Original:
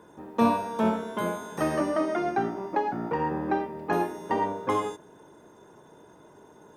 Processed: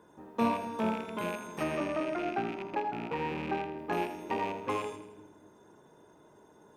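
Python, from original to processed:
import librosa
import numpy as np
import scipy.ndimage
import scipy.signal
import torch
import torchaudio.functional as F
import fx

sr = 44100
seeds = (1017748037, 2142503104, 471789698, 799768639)

y = fx.rattle_buzz(x, sr, strikes_db=-38.0, level_db=-24.0)
y = fx.high_shelf(y, sr, hz=5000.0, db=-7.0, at=(1.63, 3.79))
y = fx.echo_split(y, sr, split_hz=340.0, low_ms=246, high_ms=81, feedback_pct=52, wet_db=-11)
y = y * 10.0 ** (-6.5 / 20.0)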